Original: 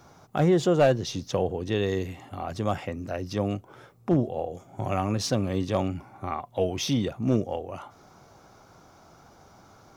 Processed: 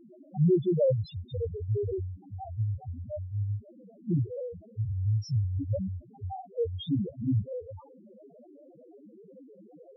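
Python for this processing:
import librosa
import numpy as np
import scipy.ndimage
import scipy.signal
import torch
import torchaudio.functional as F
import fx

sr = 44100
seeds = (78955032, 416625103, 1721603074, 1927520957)

y = fx.halfwave_hold(x, sr)
y = fx.dmg_noise_band(y, sr, seeds[0], low_hz=160.0, high_hz=680.0, level_db=-42.0)
y = fx.spec_topn(y, sr, count=1)
y = y * 10.0 ** (1.5 / 20.0)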